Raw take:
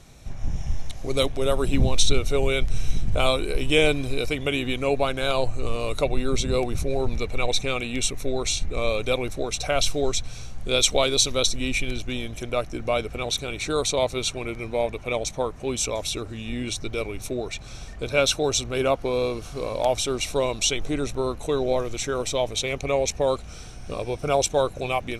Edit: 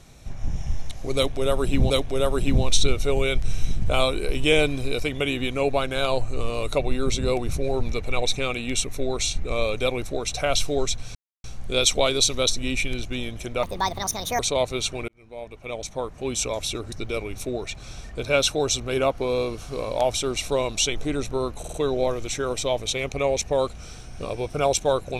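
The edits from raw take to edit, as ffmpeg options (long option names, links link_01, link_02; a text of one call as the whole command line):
ffmpeg -i in.wav -filter_complex "[0:a]asplit=10[link_01][link_02][link_03][link_04][link_05][link_06][link_07][link_08][link_09][link_10];[link_01]atrim=end=1.902[link_11];[link_02]atrim=start=1.158:end=10.41,asetpts=PTS-STARTPTS,afade=type=out:start_time=9.248:duration=0.004:curve=hsin,apad=pad_dur=0.29[link_12];[link_03]atrim=start=10.41:end=12.604,asetpts=PTS-STARTPTS,afade=type=in:duration=0.004:curve=hsin[link_13];[link_04]atrim=start=12.6:end=13.81,asetpts=PTS-STARTPTS,asetrate=70119,aresample=44100,atrim=end_sample=33560,asetpts=PTS-STARTPTS[link_14];[link_05]atrim=start=13.806:end=14.5,asetpts=PTS-STARTPTS,afade=type=out:start_time=0.69:duration=0.004:curve=hsin[link_15];[link_06]atrim=start=14.5:end=16.342,asetpts=PTS-STARTPTS,afade=type=in:duration=1.31[link_16];[link_07]atrim=start=16.758:end=21.482[link_17];[link_08]atrim=start=21.428:end=21.482[link_18];[link_09]atrim=start=21.428:end=21.482[link_19];[link_10]atrim=start=21.428[link_20];[link_12][link_13]concat=n=2:v=0:a=1[link_21];[link_11][link_21]acrossfade=duration=0.004:curve1=hsin:curve2=hsin[link_22];[link_22][link_14]acrossfade=duration=0.004:curve1=hsin:curve2=hsin[link_23];[link_15][link_16]concat=n=2:v=0:a=1[link_24];[link_23][link_24]acrossfade=duration=0.004:curve1=hsin:curve2=hsin[link_25];[link_25][link_17]acrossfade=duration=0.004:curve1=hsin:curve2=hsin[link_26];[link_26][link_18]acrossfade=duration=0.004:curve1=hsin:curve2=hsin[link_27];[link_27][link_19]acrossfade=duration=0.004:curve1=hsin:curve2=hsin[link_28];[link_28][link_20]acrossfade=duration=0.004:curve1=hsin:curve2=hsin" out.wav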